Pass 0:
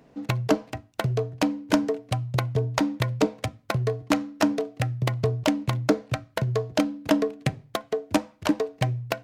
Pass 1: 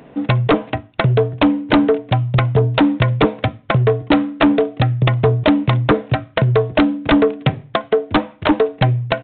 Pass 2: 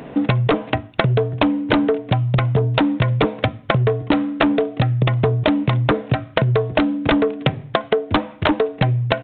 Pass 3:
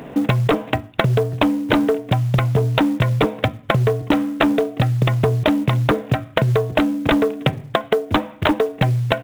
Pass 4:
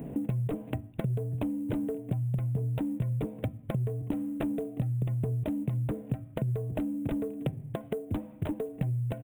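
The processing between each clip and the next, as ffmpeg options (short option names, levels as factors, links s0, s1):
-af "lowshelf=f=88:g=-6,aresample=8000,aeval=exprs='0.447*sin(PI/2*3.16*val(0)/0.447)':c=same,aresample=44100"
-af "acompressor=threshold=0.0794:ratio=6,volume=2.24"
-af "acrusher=bits=7:mode=log:mix=0:aa=0.000001"
-af "firequalizer=gain_entry='entry(160,0);entry(390,-7);entry(1200,-20);entry(2500,-17);entry(4800,-28);entry(8600,-4)':delay=0.05:min_phase=1,acompressor=threshold=0.0251:ratio=3"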